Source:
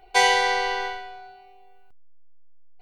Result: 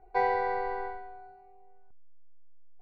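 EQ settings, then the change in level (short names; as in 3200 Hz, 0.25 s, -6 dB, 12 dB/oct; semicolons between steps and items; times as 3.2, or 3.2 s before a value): running mean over 14 samples; air absorption 150 m; tilt shelf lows +3.5 dB; -5.5 dB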